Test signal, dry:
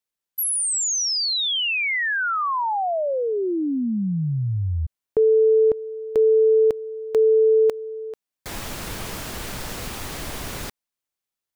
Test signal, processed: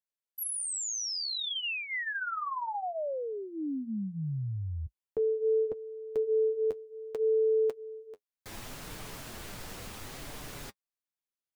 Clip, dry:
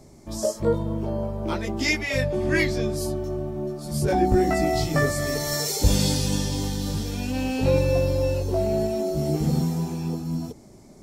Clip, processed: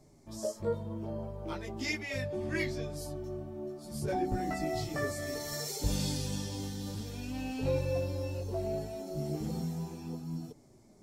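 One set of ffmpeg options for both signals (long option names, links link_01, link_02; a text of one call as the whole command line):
ffmpeg -i in.wav -af "flanger=delay=6.6:depth=4.1:regen=-35:speed=0.67:shape=sinusoidal,volume=-7.5dB" out.wav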